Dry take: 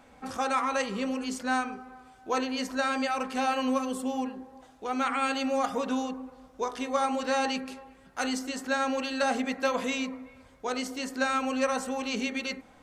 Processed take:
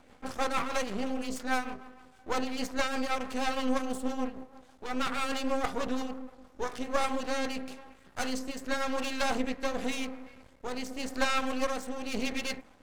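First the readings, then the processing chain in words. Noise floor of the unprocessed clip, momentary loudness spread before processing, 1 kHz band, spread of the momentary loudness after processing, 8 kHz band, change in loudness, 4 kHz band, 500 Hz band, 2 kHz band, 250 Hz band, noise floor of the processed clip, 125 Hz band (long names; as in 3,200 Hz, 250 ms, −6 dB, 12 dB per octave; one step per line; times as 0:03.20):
−56 dBFS, 12 LU, −4.5 dB, 13 LU, −2.0 dB, −3.0 dB, −1.5 dB, −3.0 dB, −3.0 dB, −3.0 dB, −58 dBFS, can't be measured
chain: rotating-speaker cabinet horn 6.3 Hz, later 0.9 Hz, at 0:06.27
half-wave rectification
level +4 dB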